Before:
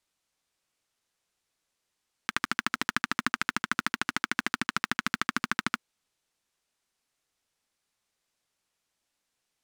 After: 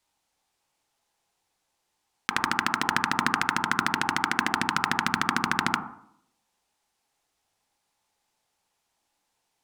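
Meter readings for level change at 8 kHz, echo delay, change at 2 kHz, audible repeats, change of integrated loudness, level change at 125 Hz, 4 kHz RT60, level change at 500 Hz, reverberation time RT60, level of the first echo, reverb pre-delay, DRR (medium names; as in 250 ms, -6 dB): +3.5 dB, no echo, +3.5 dB, no echo, +4.5 dB, +6.0 dB, 0.50 s, +6.0 dB, 0.65 s, no echo, 18 ms, 0.0 dB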